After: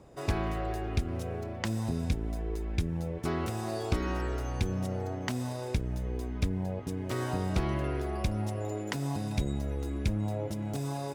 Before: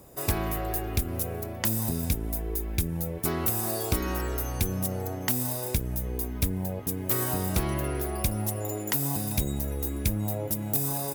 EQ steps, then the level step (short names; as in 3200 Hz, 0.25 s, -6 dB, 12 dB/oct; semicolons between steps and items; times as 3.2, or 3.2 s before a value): air absorption 110 m; -1.5 dB